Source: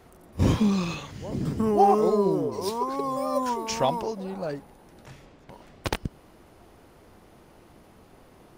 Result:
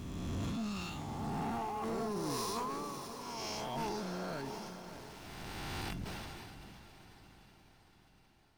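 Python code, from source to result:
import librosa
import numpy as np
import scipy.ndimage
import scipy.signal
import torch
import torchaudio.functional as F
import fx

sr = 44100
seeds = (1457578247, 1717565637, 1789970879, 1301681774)

y = fx.spec_swells(x, sr, rise_s=2.17)
y = fx.doppler_pass(y, sr, speed_mps=18, closest_m=1.2, pass_at_s=3.05)
y = fx.peak_eq(y, sr, hz=520.0, db=-11.0, octaves=0.77)
y = fx.over_compress(y, sr, threshold_db=-50.0, ratio=-1.0)
y = fx.leveller(y, sr, passes=3)
y = np.where(np.abs(y) >= 10.0 ** (-56.5 / 20.0), y, 0.0)
y = fx.comb_fb(y, sr, f0_hz=690.0, decay_s=0.29, harmonics='all', damping=0.0, mix_pct=70)
y = fx.echo_diffused(y, sr, ms=620, feedback_pct=54, wet_db=-11.0)
y = fx.sustainer(y, sr, db_per_s=21.0)
y = F.gain(torch.from_numpy(y), 10.0).numpy()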